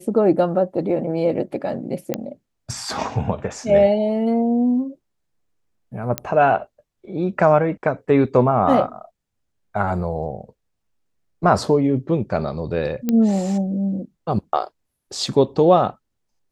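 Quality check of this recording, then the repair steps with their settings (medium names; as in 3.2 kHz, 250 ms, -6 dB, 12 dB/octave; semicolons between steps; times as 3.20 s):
2.14 s: pop -8 dBFS
6.18 s: pop -5 dBFS
13.09 s: pop -8 dBFS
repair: de-click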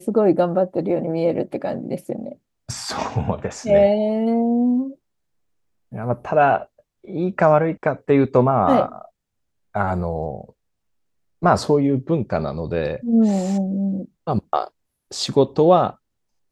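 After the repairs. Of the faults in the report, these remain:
nothing left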